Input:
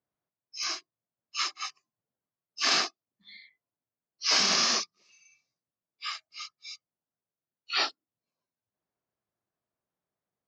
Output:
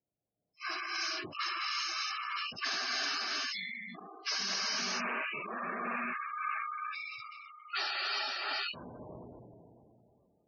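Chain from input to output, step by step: chunks repeated in reverse 571 ms, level -4.5 dB; 4.58–6.58 s: elliptic low-pass 2.6 kHz, stop band 40 dB; gated-style reverb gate 440 ms rising, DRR -6 dB; level-controlled noise filter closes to 700 Hz, open at -21.5 dBFS; compression 5:1, threshold -33 dBFS, peak gain reduction 16 dB; dynamic bell 1.6 kHz, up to +5 dB, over -54 dBFS, Q 4.7; hard clipper -28 dBFS, distortion -20 dB; spectral gate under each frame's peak -15 dB strong; decay stretcher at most 21 dB/s

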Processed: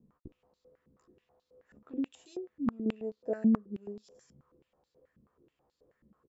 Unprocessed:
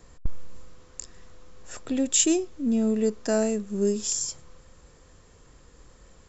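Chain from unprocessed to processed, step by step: tilt shelf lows +9.5 dB, about 720 Hz; doubling 14 ms -3.5 dB; 1.96–2.86 s: compression, threshold -17 dBFS, peak gain reduction 7.5 dB; 3.56–4.15 s: treble shelf 2.1 kHz -10.5 dB; step-sequenced band-pass 9.3 Hz 220–4200 Hz; trim -5.5 dB

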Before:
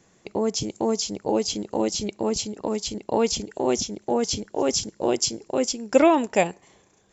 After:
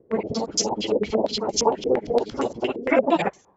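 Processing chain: slices played last to first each 81 ms, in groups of 3; plain phase-vocoder stretch 0.5×; step-sequenced low-pass 8.7 Hz 450–6100 Hz; trim +3 dB

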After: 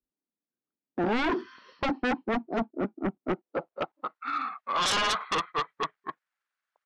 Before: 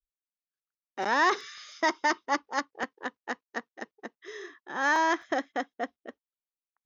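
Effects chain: pitch bend over the whole clip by -10.5 st starting unshifted; band-pass sweep 260 Hz -> 1.5 kHz, 3.23–4.24 s; sine folder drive 16 dB, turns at -23 dBFS

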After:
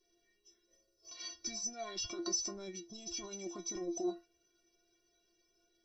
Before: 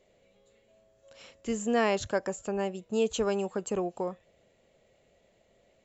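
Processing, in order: resonant high shelf 4.1 kHz +10 dB, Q 1.5; spectral noise reduction 10 dB; compressor with a negative ratio -33 dBFS, ratio -1; formant shift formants -4 st; inharmonic resonator 340 Hz, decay 0.28 s, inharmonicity 0.008; trim +10.5 dB

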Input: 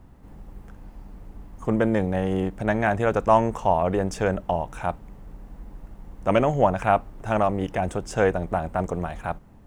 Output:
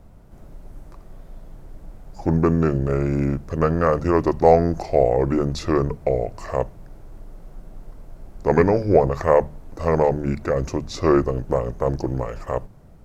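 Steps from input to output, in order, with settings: hum notches 50/100/150/200/250/300 Hz; speed mistake 45 rpm record played at 33 rpm; trim +3.5 dB

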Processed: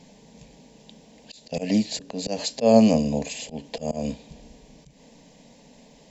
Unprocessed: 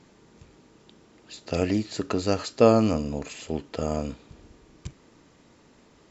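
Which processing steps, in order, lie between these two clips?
slow attack 164 ms; static phaser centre 350 Hz, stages 6; trim +8 dB

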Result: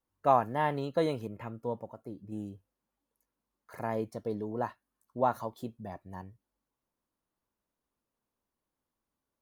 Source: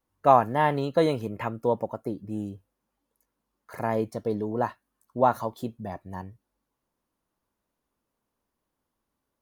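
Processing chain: 1.27–2.32 s: harmonic-percussive split percussive -7 dB; trim -6.5 dB

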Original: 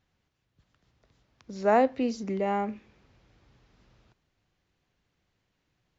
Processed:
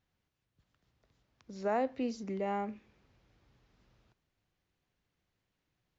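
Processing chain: peak limiter -16 dBFS, peak gain reduction 4 dB; trim -6.5 dB

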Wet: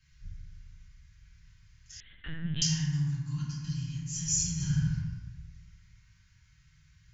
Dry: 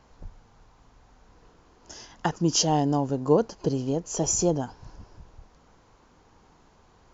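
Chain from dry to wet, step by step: elliptic band-stop 130–1900 Hz, stop band 70 dB; reverberation RT60 1.7 s, pre-delay 3 ms, DRR -10 dB; 2.00–2.62 s: LPC vocoder at 8 kHz pitch kept; 4.53–4.94 s: reverb throw, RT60 1.2 s, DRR -6.5 dB; trim -8.5 dB

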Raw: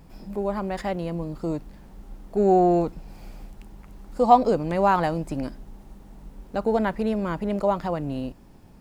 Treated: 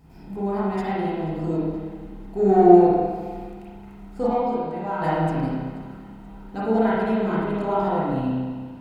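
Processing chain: comb of notches 570 Hz; feedback echo behind a high-pass 481 ms, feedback 69%, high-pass 1.7 kHz, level -22 dB; in parallel at -6.5 dB: hard clipper -14.5 dBFS, distortion -14 dB; 4.27–5.02 s: on the sum: feedback comb 87 Hz, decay 0.84 s, harmonics all, mix 80%; spring tank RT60 1.6 s, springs 31/45 ms, chirp 35 ms, DRR -8.5 dB; trim -8 dB

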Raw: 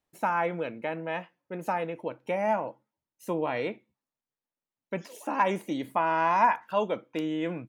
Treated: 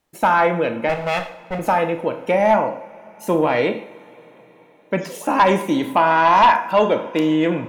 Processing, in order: 0.89–1.59 s: comb filter that takes the minimum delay 1.5 ms; reverberation, pre-delay 25 ms, DRR 8 dB; sine folder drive 6 dB, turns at -9 dBFS; trim +2 dB

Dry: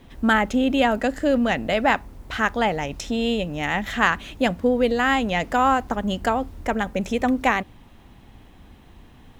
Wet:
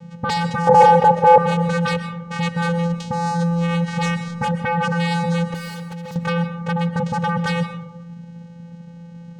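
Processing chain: vocoder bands 4, square 170 Hz; sine folder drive 14 dB, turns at -10.5 dBFS; 0.67–1.38 s: high-order bell 540 Hz +15 dB; 5.54–6.16 s: hard clipper -25 dBFS, distortion -16 dB; on a send: reverberation RT60 1.0 s, pre-delay 90 ms, DRR 9.5 dB; on the sum: trim -7 dB

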